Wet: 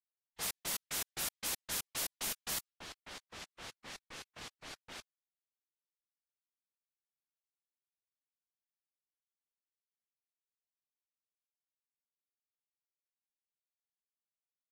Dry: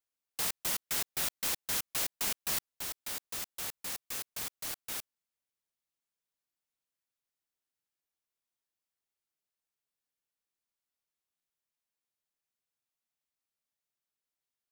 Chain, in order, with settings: low-pass opened by the level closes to 750 Hz, open at -30 dBFS; gain -3.5 dB; Vorbis 48 kbps 48000 Hz

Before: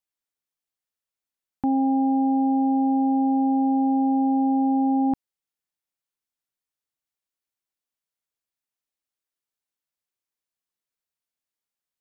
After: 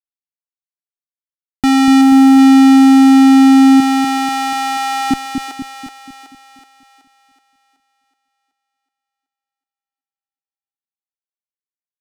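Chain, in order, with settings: fuzz box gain 42 dB, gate -48 dBFS; 3.8–5.11 brick-wall FIR high-pass 320 Hz; split-band echo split 450 Hz, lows 0.242 s, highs 0.375 s, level -5.5 dB; gain +3.5 dB

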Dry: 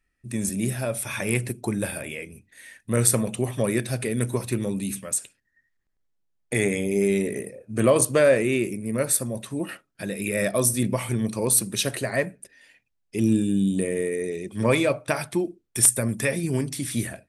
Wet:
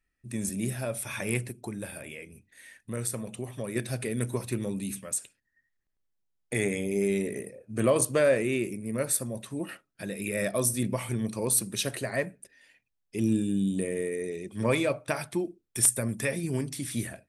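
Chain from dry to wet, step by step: 1.42–3.76 compressor 1.5:1, threshold -37 dBFS, peak gain reduction 8.5 dB; gain -5 dB

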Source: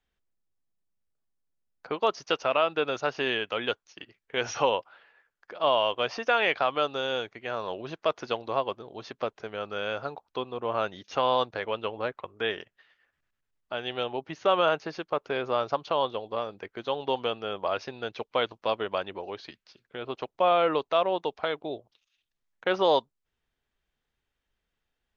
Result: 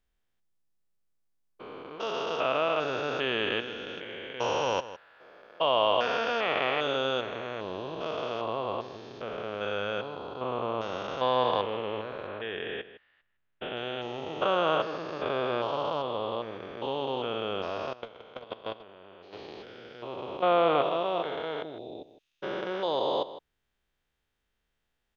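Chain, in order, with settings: stepped spectrum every 0.4 s; 12.27–13.77 LPF 3600 Hz 24 dB/oct; outdoor echo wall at 27 m, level -14 dB; 17.93–19.33 level quantiser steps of 18 dB; gain +3 dB

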